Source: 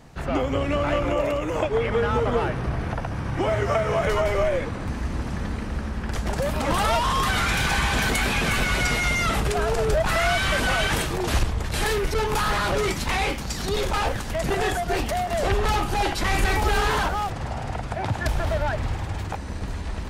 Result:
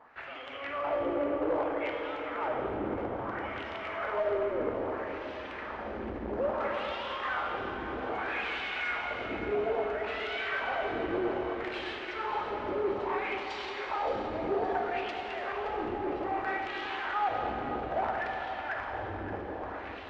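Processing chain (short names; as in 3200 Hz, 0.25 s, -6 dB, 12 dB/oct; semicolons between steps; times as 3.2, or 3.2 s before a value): bell 160 Hz -13.5 dB 0.74 oct; in parallel at +1 dB: negative-ratio compressor -28 dBFS, ratio -0.5; on the sum: wrapped overs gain 11 dB; wah 0.61 Hz 310–3200 Hz, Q 2.1; hard clip -21 dBFS, distortion -20 dB; tape spacing loss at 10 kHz 30 dB; on a send: split-band echo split 830 Hz, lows 0.211 s, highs 0.57 s, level -12 dB; on the sum: plate-style reverb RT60 3.7 s, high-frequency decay 0.9×, DRR 1 dB; core saturation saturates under 540 Hz; gain -3 dB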